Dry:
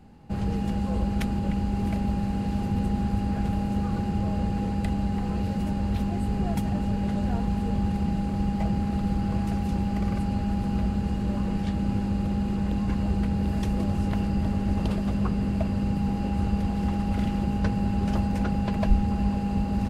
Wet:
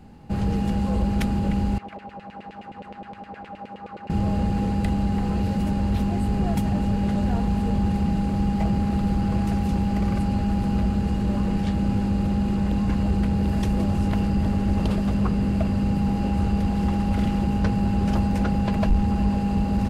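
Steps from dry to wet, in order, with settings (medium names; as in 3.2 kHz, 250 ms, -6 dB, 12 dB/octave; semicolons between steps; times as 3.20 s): saturation -17 dBFS, distortion -20 dB; 1.78–4.10 s: LFO band-pass saw down 9.6 Hz 480–2800 Hz; trim +4.5 dB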